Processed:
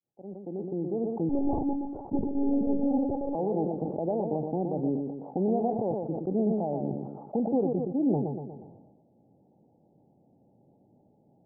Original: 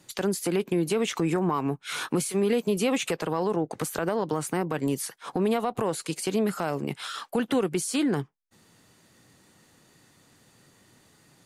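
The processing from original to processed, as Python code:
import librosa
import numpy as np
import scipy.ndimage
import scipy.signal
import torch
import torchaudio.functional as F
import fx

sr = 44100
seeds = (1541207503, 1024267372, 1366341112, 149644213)

y = fx.fade_in_head(x, sr, length_s=1.34)
y = scipy.signal.sosfilt(scipy.signal.cheby1(6, 3, 850.0, 'lowpass', fs=sr, output='sos'), y)
y = fx.low_shelf(y, sr, hz=74.0, db=-11.5)
y = fx.echo_feedback(y, sr, ms=120, feedback_pct=34, wet_db=-7)
y = fx.lpc_monotone(y, sr, seeds[0], pitch_hz=280.0, order=16, at=(1.29, 3.35))
y = fx.sustainer(y, sr, db_per_s=44.0)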